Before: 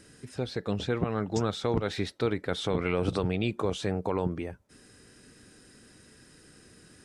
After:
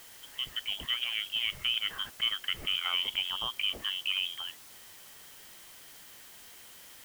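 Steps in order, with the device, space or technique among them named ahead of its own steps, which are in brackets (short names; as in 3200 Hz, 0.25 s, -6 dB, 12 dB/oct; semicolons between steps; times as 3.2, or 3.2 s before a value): scrambled radio voice (BPF 370–2900 Hz; inverted band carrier 3500 Hz; white noise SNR 16 dB)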